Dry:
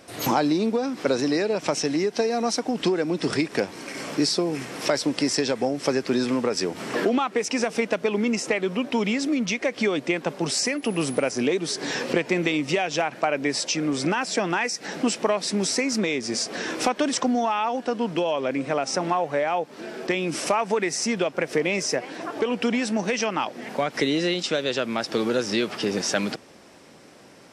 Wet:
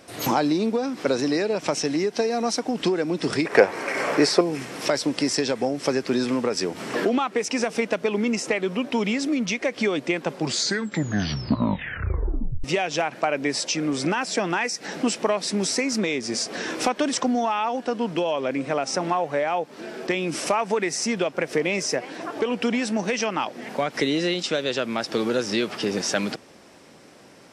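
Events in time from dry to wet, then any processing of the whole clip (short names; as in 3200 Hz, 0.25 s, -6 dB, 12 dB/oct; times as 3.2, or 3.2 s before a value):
3.45–4.41 band shelf 960 Hz +11 dB 2.9 oct
10.26 tape stop 2.38 s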